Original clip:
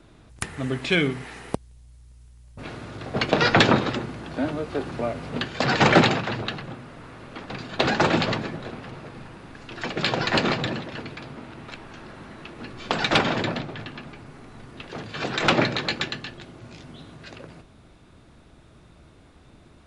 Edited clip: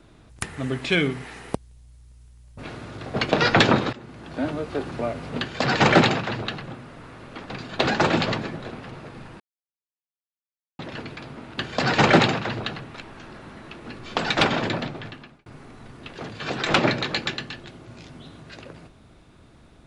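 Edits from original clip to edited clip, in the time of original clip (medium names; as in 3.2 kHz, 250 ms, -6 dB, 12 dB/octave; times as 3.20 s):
3.93–4.46 s: fade in, from -18 dB
5.40–6.66 s: copy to 11.58 s
9.40–10.79 s: mute
13.75–14.20 s: fade out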